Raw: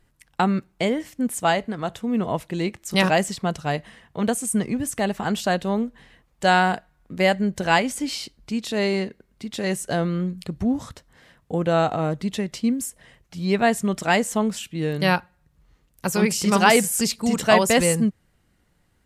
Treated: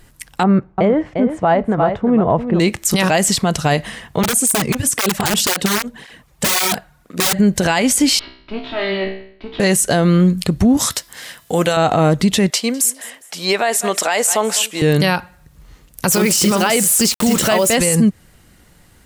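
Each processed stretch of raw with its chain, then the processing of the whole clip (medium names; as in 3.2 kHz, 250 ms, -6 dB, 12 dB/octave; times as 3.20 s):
0.43–2.60 s: low-pass 1.1 kHz + peaking EQ 250 Hz -6 dB 0.63 oct + delay 349 ms -10.5 dB
4.23–7.39 s: integer overflow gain 16.5 dB + cancelling through-zero flanger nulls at 1.9 Hz, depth 4.6 ms
8.19–9.60 s: comb filter that takes the minimum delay 3.1 ms + steep low-pass 3.6 kHz + feedback comb 64 Hz, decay 0.59 s, mix 90%
10.77–11.77 s: tilt EQ +3 dB/octave + de-hum 335.9 Hz, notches 16
12.50–14.82 s: Chebyshev high-pass 580 Hz + feedback delay 203 ms, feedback 33%, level -22 dB
16.11–17.75 s: small resonant body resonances 350/570/1300/3000 Hz, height 8 dB, ringing for 60 ms + word length cut 6-bit, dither none
whole clip: compression, threshold -21 dBFS; treble shelf 4.3 kHz +6.5 dB; loudness maximiser +19.5 dB; trim -4.5 dB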